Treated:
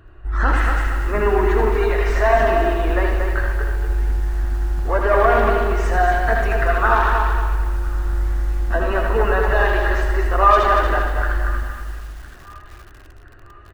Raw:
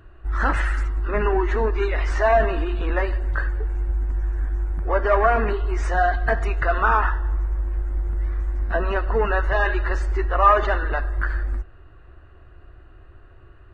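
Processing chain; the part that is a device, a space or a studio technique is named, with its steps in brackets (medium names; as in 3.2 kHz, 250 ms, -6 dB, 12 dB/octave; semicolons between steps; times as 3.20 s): feedback echo behind a high-pass 1012 ms, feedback 49%, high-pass 1.5 kHz, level -18.5 dB; saturated reverb return (on a send at -4.5 dB: reverberation RT60 1.1 s, pre-delay 61 ms + saturation -17 dBFS, distortion -12 dB); on the sum: delay 80 ms -7 dB; bit-crushed delay 233 ms, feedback 35%, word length 7-bit, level -5.5 dB; trim +1 dB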